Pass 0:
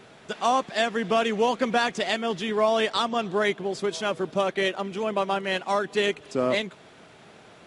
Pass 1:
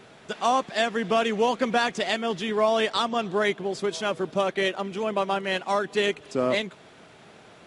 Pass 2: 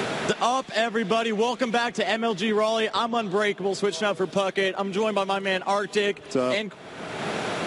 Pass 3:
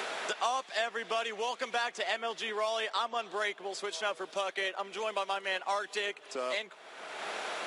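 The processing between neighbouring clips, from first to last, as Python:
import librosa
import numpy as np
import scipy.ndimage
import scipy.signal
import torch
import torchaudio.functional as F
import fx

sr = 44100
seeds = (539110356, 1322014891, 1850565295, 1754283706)

y1 = x
y2 = fx.band_squash(y1, sr, depth_pct=100)
y3 = scipy.signal.sosfilt(scipy.signal.butter(2, 620.0, 'highpass', fs=sr, output='sos'), y2)
y3 = y3 * librosa.db_to_amplitude(-6.5)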